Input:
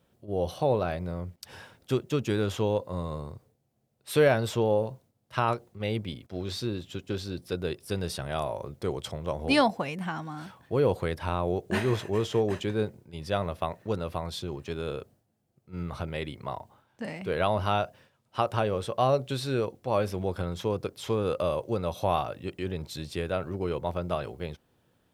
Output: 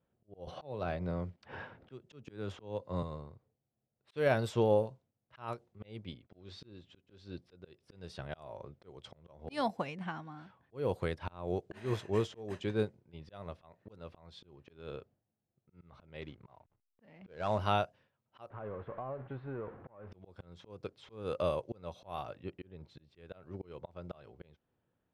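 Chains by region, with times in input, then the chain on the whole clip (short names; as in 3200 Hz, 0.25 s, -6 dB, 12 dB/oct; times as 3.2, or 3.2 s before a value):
0.47–3.03 LPF 4000 Hz 6 dB/oct + three-band squash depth 70%
16.21–17.59 CVSD 64 kbps + backlash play -47.5 dBFS + air absorption 89 m
18.5–20.12 zero-crossing step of -29.5 dBFS + ladder low-pass 1900 Hz, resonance 25% + compressor 10:1, threshold -29 dBFS
22.34–23.17 high shelf 2100 Hz -8 dB + mismatched tape noise reduction encoder only
whole clip: low-pass opened by the level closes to 2200 Hz, open at -21 dBFS; auto swell 0.268 s; upward expander 1.5:1, over -43 dBFS; gain -2 dB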